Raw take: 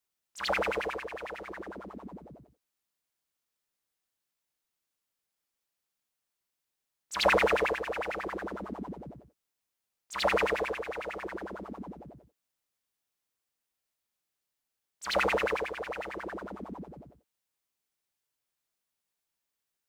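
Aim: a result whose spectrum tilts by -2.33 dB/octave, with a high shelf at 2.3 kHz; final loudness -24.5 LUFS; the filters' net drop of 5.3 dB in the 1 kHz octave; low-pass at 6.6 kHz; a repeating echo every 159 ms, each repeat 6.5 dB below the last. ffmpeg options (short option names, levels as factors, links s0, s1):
-af "lowpass=6600,equalizer=f=1000:t=o:g=-6,highshelf=f=2300:g=-4.5,aecho=1:1:159|318|477|636|795|954:0.473|0.222|0.105|0.0491|0.0231|0.0109,volume=2.99"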